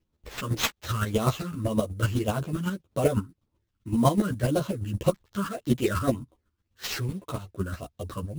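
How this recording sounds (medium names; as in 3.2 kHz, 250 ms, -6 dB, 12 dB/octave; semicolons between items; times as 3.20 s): phasing stages 12, 1.8 Hz, lowest notch 670–2100 Hz; aliases and images of a low sample rate 10 kHz, jitter 20%; chopped level 7.9 Hz, depth 60%, duty 20%; a shimmering, thickened sound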